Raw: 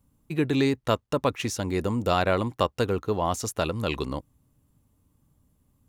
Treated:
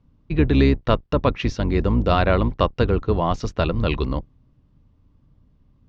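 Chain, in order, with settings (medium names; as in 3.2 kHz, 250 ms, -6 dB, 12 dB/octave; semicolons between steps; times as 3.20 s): octave divider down 2 oct, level -1 dB; steep low-pass 5.4 kHz 36 dB/octave; tone controls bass +3 dB, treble -5 dB; band-stop 820 Hz, Q 19; trim +4 dB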